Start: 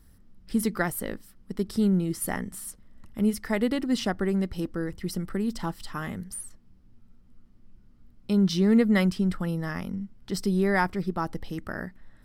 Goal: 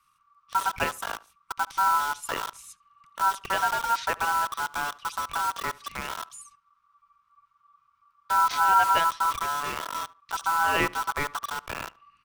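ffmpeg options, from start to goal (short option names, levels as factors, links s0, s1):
-filter_complex "[0:a]highshelf=f=7900:g=-11.5,aeval=exprs='val(0)*sin(2*PI*1300*n/s)':c=same,asetrate=39289,aresample=44100,atempo=1.12246,acrossover=split=210|1600[s0][s1][s2];[s1]acrusher=bits=5:mix=0:aa=0.000001[s3];[s0][s3][s2]amix=inputs=3:normalize=0,asplit=2[s4][s5];[s5]adelay=73,lowpass=f=2700:p=1,volume=0.0891,asplit=2[s6][s7];[s7]adelay=73,lowpass=f=2700:p=1,volume=0.25[s8];[s4][s6][s8]amix=inputs=3:normalize=0,volume=1.33"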